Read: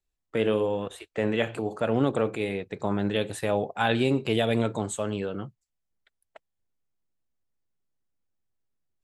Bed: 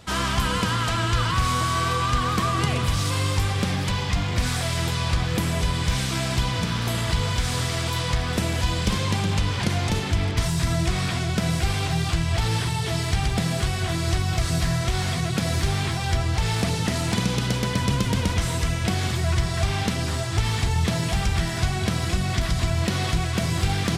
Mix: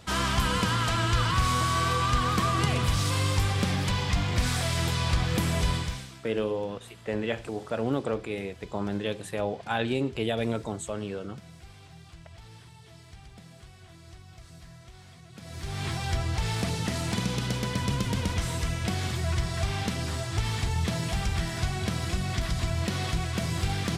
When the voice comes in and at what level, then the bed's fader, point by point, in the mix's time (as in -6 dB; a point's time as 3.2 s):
5.90 s, -4.0 dB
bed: 5.74 s -2.5 dB
6.24 s -25.5 dB
15.27 s -25.5 dB
15.88 s -5.5 dB